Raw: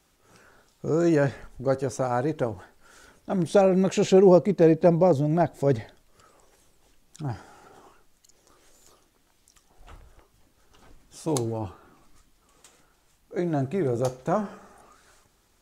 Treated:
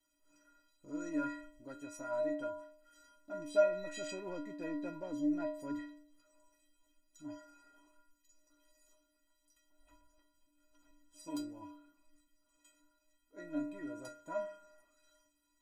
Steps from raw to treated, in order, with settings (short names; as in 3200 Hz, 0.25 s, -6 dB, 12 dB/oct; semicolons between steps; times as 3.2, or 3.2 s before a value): dynamic EQ 1700 Hz, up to +5 dB, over -42 dBFS, Q 1.5; in parallel at -6 dB: soft clip -21.5 dBFS, distortion -8 dB; on the sum: metallic resonator 290 Hz, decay 0.71 s, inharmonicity 0.03; gain +1.5 dB